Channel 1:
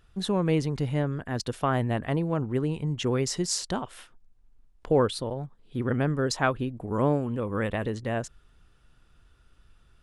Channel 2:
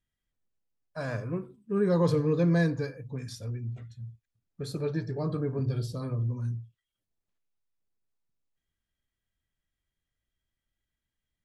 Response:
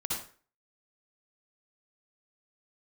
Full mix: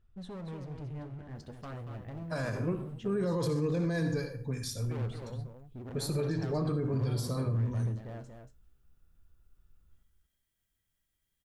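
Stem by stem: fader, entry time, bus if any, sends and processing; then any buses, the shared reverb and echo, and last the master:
−13.0 dB, 0.00 s, send −18.5 dB, echo send −6.5 dB, spectral tilt −2.5 dB per octave; flanger 0.53 Hz, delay 9.1 ms, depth 8.5 ms, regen +58%; hard clipping −27.5 dBFS, distortion −7 dB
−0.5 dB, 1.35 s, send −11.5 dB, no echo send, high-shelf EQ 7,300 Hz +11.5 dB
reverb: on, RT60 0.40 s, pre-delay 53 ms
echo: single-tap delay 233 ms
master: brickwall limiter −23.5 dBFS, peak gain reduction 11.5 dB

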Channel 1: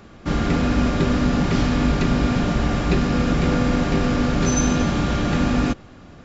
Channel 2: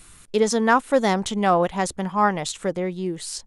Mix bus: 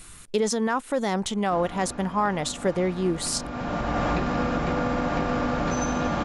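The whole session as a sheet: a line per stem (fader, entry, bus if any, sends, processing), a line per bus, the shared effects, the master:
−6.0 dB, 1.25 s, no send, downward compressor, threshold −20 dBFS, peak gain reduction 7 dB; parametric band 830 Hz +12.5 dB 2.4 octaves; notch filter 400 Hz, Q 12; automatic ducking −14 dB, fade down 1.95 s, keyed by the second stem
0.0 dB, 0.00 s, no send, brickwall limiter −13.5 dBFS, peak gain reduction 7.5 dB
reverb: not used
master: speech leveller within 5 dB 0.5 s

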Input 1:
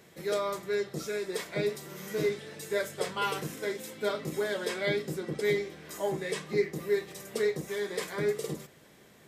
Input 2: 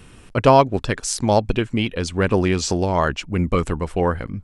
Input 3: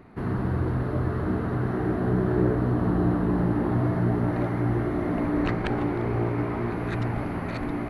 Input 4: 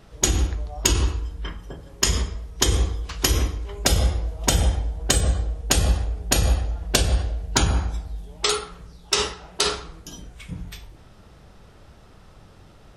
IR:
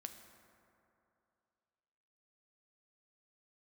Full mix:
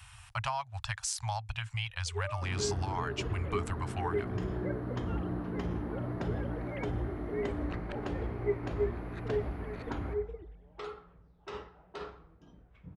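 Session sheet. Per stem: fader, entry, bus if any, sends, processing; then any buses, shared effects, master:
−8.0 dB, 1.90 s, no bus, no send, three sine waves on the formant tracks
−3.0 dB, 0.00 s, bus A, no send, elliptic band-stop filter 110–800 Hz, stop band 40 dB
−13.0 dB, 2.25 s, no bus, no send, no processing
−15.0 dB, 2.35 s, bus A, no send, low-pass filter 1,500 Hz 12 dB per octave
bus A: 0.0 dB, high-pass filter 52 Hz; downward compressor 6 to 1, threshold −32 dBFS, peak gain reduction 15.5 dB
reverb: not used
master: no processing

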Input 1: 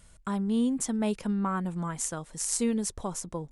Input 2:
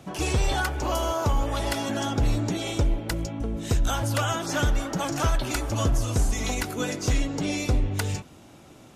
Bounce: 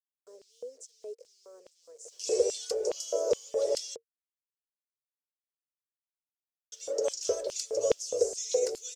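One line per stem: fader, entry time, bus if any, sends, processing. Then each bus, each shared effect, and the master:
−16.5 dB, 0.00 s, no send, bit reduction 7 bits
−3.0 dB, 2.05 s, muted 0:03.96–0:06.72, no send, bit reduction 9 bits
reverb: not used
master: drawn EQ curve 100 Hz 0 dB, 190 Hz −23 dB, 290 Hz −13 dB, 460 Hz +14 dB, 790 Hz −19 dB, 1,300 Hz −20 dB, 3,500 Hz −16 dB, 5,300 Hz +3 dB, 7,600 Hz +1 dB, 11,000 Hz −15 dB; auto-filter high-pass square 2.4 Hz 540–3,300 Hz

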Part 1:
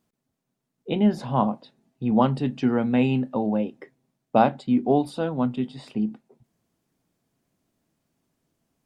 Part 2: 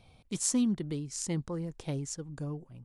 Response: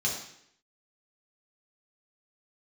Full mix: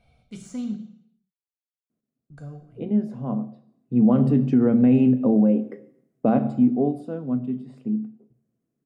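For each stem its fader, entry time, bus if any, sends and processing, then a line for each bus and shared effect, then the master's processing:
0:03.59 −14.5 dB → 0:04.12 −4 dB → 0:06.35 −4 dB → 0:06.91 −13 dB, 1.90 s, send −16.5 dB, octave-band graphic EQ 125/250/500/4,000 Hz +10/+9/+6/−9 dB
−4.0 dB, 0.00 s, muted 0:00.77–0:02.30, send −9.5 dB, de-essing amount 80%; high-shelf EQ 5,000 Hz −5 dB; comb filter 1.4 ms, depth 52%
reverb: on, RT60 0.70 s, pre-delay 3 ms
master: parametric band 890 Hz −12 dB 0.21 octaves; brickwall limiter −10 dBFS, peak gain reduction 7.5 dB

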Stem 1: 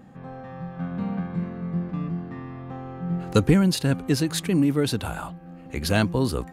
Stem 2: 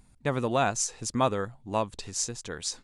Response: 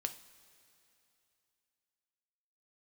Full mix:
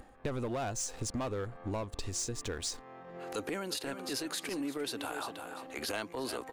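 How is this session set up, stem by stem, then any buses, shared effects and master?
+1.5 dB, 0.00 s, no send, echo send −12 dB, high-pass filter 290 Hz 12 dB per octave; transient designer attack −12 dB, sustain +1 dB; automatic ducking −12 dB, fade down 0.25 s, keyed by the second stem
−6.5 dB, 0.00 s, no send, no echo send, leveller curve on the samples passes 3; low-shelf EQ 420 Hz +10 dB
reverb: not used
echo: repeating echo 346 ms, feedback 18%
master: parametric band 170 Hz −13 dB 0.77 octaves; downward compressor 6 to 1, threshold −34 dBFS, peak gain reduction 13.5 dB

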